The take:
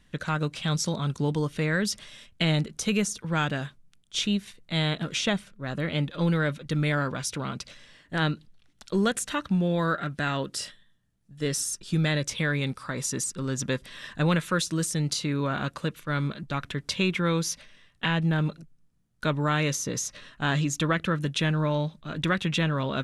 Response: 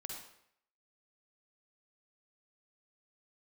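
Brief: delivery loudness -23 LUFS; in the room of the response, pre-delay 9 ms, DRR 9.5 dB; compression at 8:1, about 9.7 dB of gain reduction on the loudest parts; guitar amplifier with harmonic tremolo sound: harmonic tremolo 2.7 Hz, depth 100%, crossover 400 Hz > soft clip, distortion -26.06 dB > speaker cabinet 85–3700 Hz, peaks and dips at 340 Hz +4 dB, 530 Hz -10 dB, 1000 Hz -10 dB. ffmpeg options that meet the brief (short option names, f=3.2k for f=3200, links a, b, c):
-filter_complex "[0:a]acompressor=threshold=-31dB:ratio=8,asplit=2[a][b];[1:a]atrim=start_sample=2205,adelay=9[c];[b][c]afir=irnorm=-1:irlink=0,volume=-7dB[d];[a][d]amix=inputs=2:normalize=0,acrossover=split=400[e][f];[e]aeval=exprs='val(0)*(1-1/2+1/2*cos(2*PI*2.7*n/s))':c=same[g];[f]aeval=exprs='val(0)*(1-1/2-1/2*cos(2*PI*2.7*n/s))':c=same[h];[g][h]amix=inputs=2:normalize=0,asoftclip=threshold=-24.5dB,highpass=85,equalizer=f=340:t=q:w=4:g=4,equalizer=f=530:t=q:w=4:g=-10,equalizer=f=1k:t=q:w=4:g=-10,lowpass=f=3.7k:w=0.5412,lowpass=f=3.7k:w=1.3066,volume=19dB"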